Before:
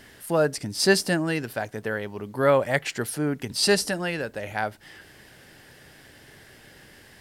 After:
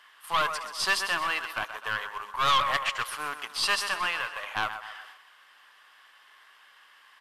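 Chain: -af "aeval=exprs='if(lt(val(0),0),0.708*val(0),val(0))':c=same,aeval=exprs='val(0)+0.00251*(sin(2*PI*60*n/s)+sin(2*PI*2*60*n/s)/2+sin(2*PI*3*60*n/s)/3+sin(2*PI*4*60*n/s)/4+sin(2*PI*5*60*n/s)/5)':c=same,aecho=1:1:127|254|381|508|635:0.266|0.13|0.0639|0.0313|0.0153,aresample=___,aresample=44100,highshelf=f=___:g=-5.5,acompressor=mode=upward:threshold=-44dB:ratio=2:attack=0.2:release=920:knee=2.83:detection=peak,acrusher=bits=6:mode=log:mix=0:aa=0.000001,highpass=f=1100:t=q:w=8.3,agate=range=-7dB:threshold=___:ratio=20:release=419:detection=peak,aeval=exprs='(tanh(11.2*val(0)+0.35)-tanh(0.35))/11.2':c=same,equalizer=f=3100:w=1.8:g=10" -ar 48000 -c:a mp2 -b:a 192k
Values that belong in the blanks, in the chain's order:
32000, 2200, -47dB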